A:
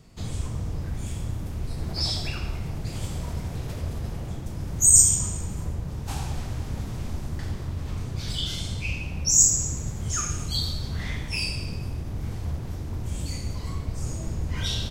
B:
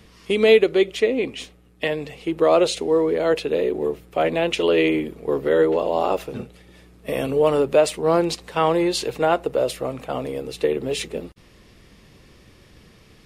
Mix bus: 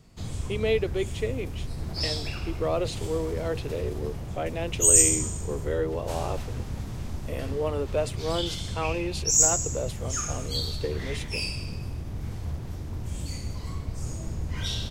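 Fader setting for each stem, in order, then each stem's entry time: -2.5 dB, -11.0 dB; 0.00 s, 0.20 s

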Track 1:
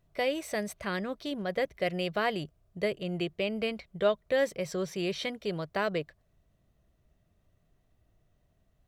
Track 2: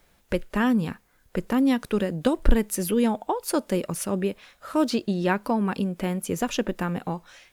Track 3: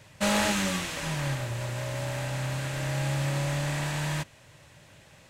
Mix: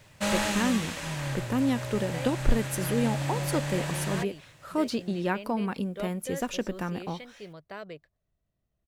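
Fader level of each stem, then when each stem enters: -11.0 dB, -5.0 dB, -2.5 dB; 1.95 s, 0.00 s, 0.00 s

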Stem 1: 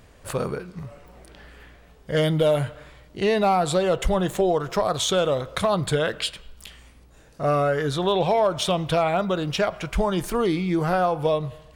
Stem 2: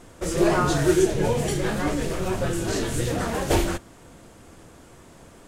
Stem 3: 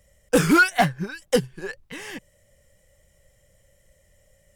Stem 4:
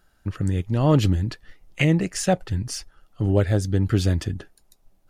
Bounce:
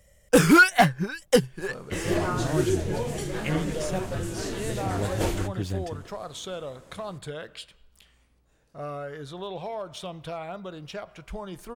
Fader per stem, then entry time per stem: -14.0 dB, -6.5 dB, +1.0 dB, -10.5 dB; 1.35 s, 1.70 s, 0.00 s, 1.65 s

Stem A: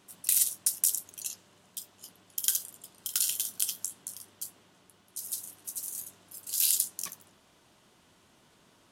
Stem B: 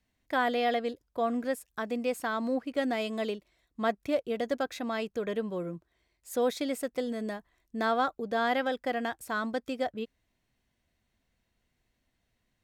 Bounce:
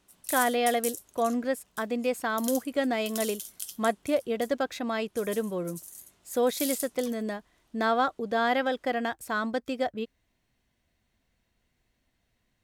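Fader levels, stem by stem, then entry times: -8.0 dB, +2.5 dB; 0.00 s, 0.00 s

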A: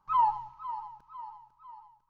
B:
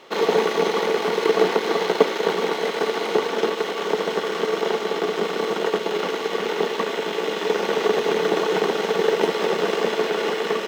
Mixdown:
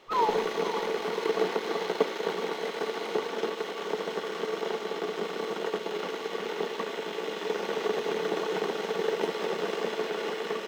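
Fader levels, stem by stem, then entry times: -3.0 dB, -9.0 dB; 0.00 s, 0.00 s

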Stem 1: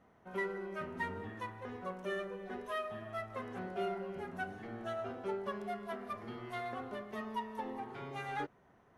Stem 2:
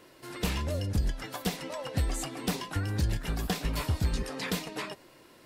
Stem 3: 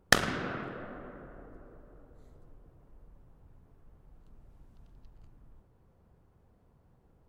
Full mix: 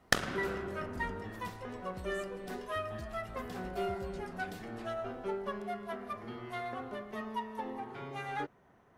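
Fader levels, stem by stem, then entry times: +1.5 dB, -18.5 dB, -5.5 dB; 0.00 s, 0.00 s, 0.00 s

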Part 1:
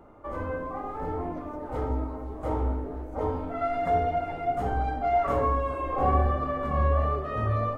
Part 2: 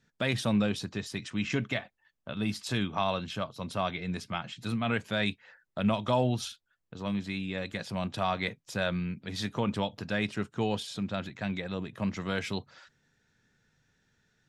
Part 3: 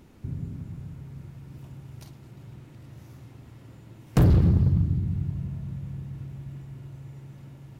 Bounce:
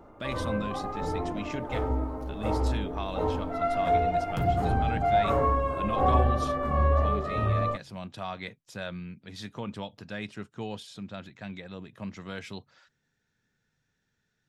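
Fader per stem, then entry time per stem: +0.5 dB, -6.5 dB, -12.0 dB; 0.00 s, 0.00 s, 0.20 s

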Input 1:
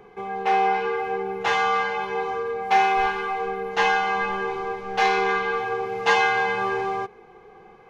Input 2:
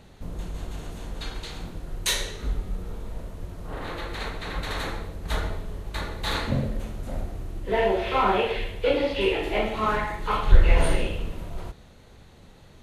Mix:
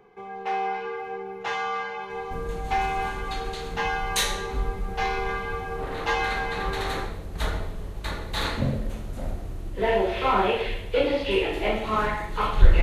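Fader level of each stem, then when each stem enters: -7.0 dB, 0.0 dB; 0.00 s, 2.10 s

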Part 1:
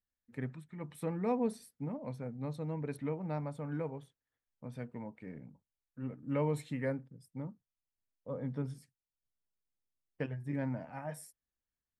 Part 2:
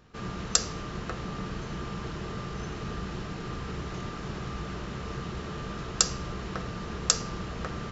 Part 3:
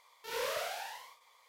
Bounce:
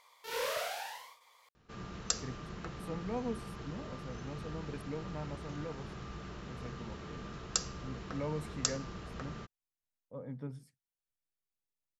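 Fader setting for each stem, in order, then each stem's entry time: -5.0 dB, -9.0 dB, +0.5 dB; 1.85 s, 1.55 s, 0.00 s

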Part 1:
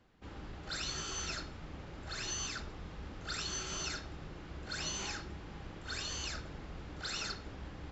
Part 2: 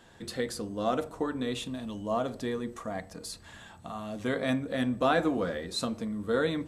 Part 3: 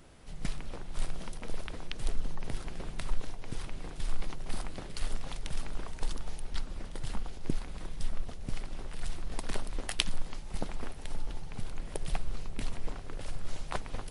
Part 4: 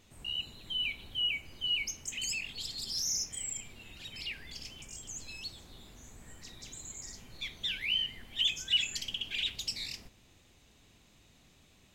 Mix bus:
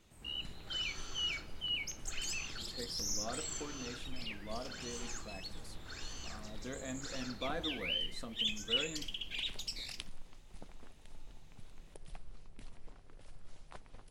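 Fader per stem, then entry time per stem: -8.0 dB, -14.5 dB, -16.5 dB, -5.5 dB; 0.00 s, 2.40 s, 0.00 s, 0.00 s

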